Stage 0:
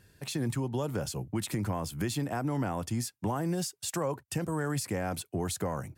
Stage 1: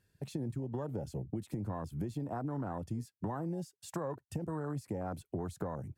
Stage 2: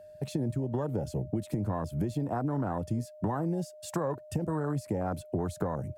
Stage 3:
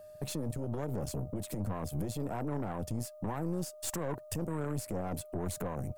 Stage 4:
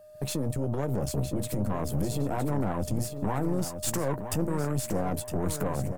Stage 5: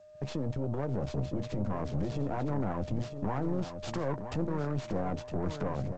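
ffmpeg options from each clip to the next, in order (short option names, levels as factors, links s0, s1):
-af "afwtdn=0.0158,acompressor=threshold=0.0126:ratio=4,volume=1.33"
-af "aeval=exprs='val(0)+0.002*sin(2*PI*610*n/s)':c=same,volume=2.11"
-af "alimiter=level_in=1.58:limit=0.0631:level=0:latency=1:release=15,volume=0.631,crystalizer=i=1.5:c=0,aeval=exprs='(tanh(39.8*val(0)+0.75)-tanh(0.75))/39.8':c=same,volume=1.5"
-filter_complex "[0:a]dynaudnorm=f=120:g=3:m=2.51,asplit=2[s0][s1];[s1]adelay=15,volume=0.224[s2];[s0][s2]amix=inputs=2:normalize=0,aecho=1:1:962|1924|2886:0.355|0.0923|0.024,volume=0.794"
-filter_complex "[0:a]acrossover=split=840|3400[s0][s1][s2];[s2]aeval=exprs='abs(val(0))':c=same[s3];[s0][s1][s3]amix=inputs=3:normalize=0,volume=0.668" -ar 16000 -c:a g722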